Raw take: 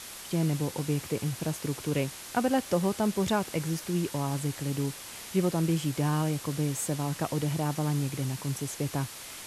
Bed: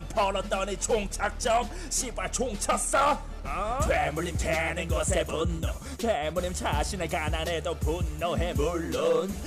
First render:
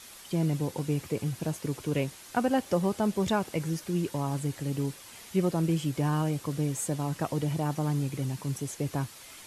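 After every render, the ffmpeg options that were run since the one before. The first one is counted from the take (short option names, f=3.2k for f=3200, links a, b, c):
-af "afftdn=nr=7:nf=-43"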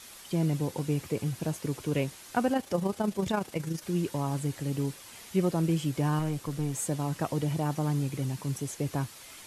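-filter_complex "[0:a]asettb=1/sr,asplit=3[a][b][c];[a]atrim=end=2.534[d];[b]atrim=start=2.53:end=3.83,asetpts=PTS-STARTPTS,afade=t=in:d=0.004:c=qsin,afade=t=out:st=1.296:d=0.004:c=qsin,tremolo=f=27:d=0.519[e];[c]atrim=start=3.826[f];[d][e]acrossfade=d=0.004:c1=hsin:c2=qsin[g];[g][f]acrossfade=d=0.004:c1=qsin:c2=hsin,asettb=1/sr,asplit=3[h][i][j];[h]atrim=end=6.194[k];[i]atrim=start=6.19:end=6.74,asetpts=PTS-STARTPTS,afade=t=in:d=0.004:c=qsin,afade=t=out:st=0.546:d=0.004:c=qsin,aeval=exprs='(tanh(12.6*val(0)+0.4)-tanh(0.4))/12.6':c=same[l];[j]atrim=start=6.736[m];[k][l]acrossfade=d=0.004:c1=hsin:c2=qsin[n];[n][m]acrossfade=d=0.004:c1=qsin:c2=hsin"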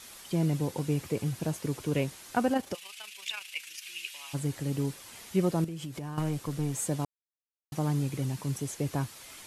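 -filter_complex "[0:a]asplit=3[a][b][c];[a]afade=t=out:st=2.73:d=0.02[d];[b]highpass=f=2.6k:t=q:w=4.4,afade=t=in:st=2.73:d=0.02,afade=t=out:st=4.33:d=0.02[e];[c]afade=t=in:st=4.33:d=0.02[f];[d][e][f]amix=inputs=3:normalize=0,asettb=1/sr,asplit=3[g][h][i];[g]atrim=end=5.644[j];[h]atrim=start=5.64:end=6.18,asetpts=PTS-STARTPTS,afade=t=in:d=0.004:c=qsin,afade=t=out:st=0.536:d=0.004:c=qsin,acompressor=threshold=-34dB:ratio=12:attack=3.2:release=140:knee=1:detection=peak[k];[i]atrim=start=6.176[l];[j][k]acrossfade=d=0.004:c1=hsin:c2=qsin[m];[m][l]acrossfade=d=0.004:c1=qsin:c2=hsin,asplit=3[n][o][p];[n]atrim=end=7.05,asetpts=PTS-STARTPTS,afade=t=out:st=7.046:d=0.004:c=hsin[q];[o]atrim=start=7.05:end=7.72,asetpts=PTS-STARTPTS,volume=0[r];[p]atrim=start=7.72,asetpts=PTS-STARTPTS,afade=t=in:d=0.004:c=hsin[s];[q][r][s]concat=n=3:v=0:a=1"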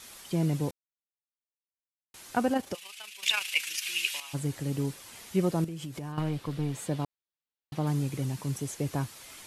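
-filter_complex "[0:a]asettb=1/sr,asplit=3[a][b][c];[a]atrim=end=6.124[d];[b]atrim=start=6.12:end=7.87,asetpts=PTS-STARTPTS,afade=t=in:d=0.004:c=qsin,afade=t=out:st=1.746:d=0.004:c=qsin,highshelf=f=5.1k:t=q:w=1.5:g=-7[e];[c]atrim=start=7.866[f];[d][e]acrossfade=d=0.004:c1=hsin:c2=qsin[g];[g][f]acrossfade=d=0.004:c1=qsin:c2=hsin,asplit=5[h][i][j][k][l];[h]atrim=end=0.71,asetpts=PTS-STARTPTS,afade=t=out:st=0.706:d=0.004:c=hsin[m];[i]atrim=start=0.71:end=2.14,asetpts=PTS-STARTPTS,volume=0[n];[j]atrim=start=2.14:end=3.232,asetpts=PTS-STARTPTS,afade=t=in:d=0.004:c=hsin[o];[k]atrim=start=3.228:end=4.202,asetpts=PTS-STARTPTS,volume=9.5dB[p];[l]atrim=start=4.198[q];[m][n][o]concat=n=3:v=0:a=1[r];[r][p]acrossfade=d=0.004:c1=hsin:c2=hsin[s];[s][q]acrossfade=d=0.004:c1=hsin:c2=hsin"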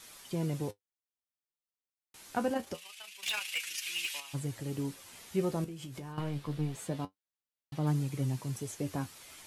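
-filter_complex "[0:a]flanger=delay=6.1:depth=9.9:regen=50:speed=0.25:shape=triangular,acrossover=split=950[a][b];[b]volume=29dB,asoftclip=hard,volume=-29dB[c];[a][c]amix=inputs=2:normalize=0"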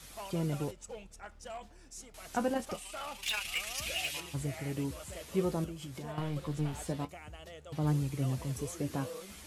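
-filter_complex "[1:a]volume=-19.5dB[a];[0:a][a]amix=inputs=2:normalize=0"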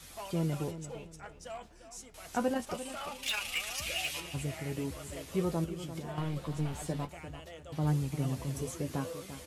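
-filter_complex "[0:a]asplit=2[a][b];[b]adelay=12,volume=-11dB[c];[a][c]amix=inputs=2:normalize=0,asplit=2[d][e];[e]adelay=346,lowpass=f=3.5k:p=1,volume=-12dB,asplit=2[f][g];[g]adelay=346,lowpass=f=3.5k:p=1,volume=0.29,asplit=2[h][i];[i]adelay=346,lowpass=f=3.5k:p=1,volume=0.29[j];[d][f][h][j]amix=inputs=4:normalize=0"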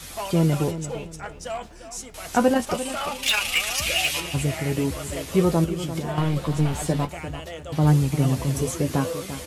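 -af "volume=12dB"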